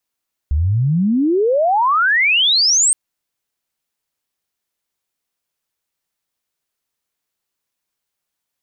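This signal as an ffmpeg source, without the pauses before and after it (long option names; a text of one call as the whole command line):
ffmpeg -f lavfi -i "aevalsrc='pow(10,(-13+2.5*t/2.42)/20)*sin(2*PI*68*2.42/log(8700/68)*(exp(log(8700/68)*t/2.42)-1))':duration=2.42:sample_rate=44100" out.wav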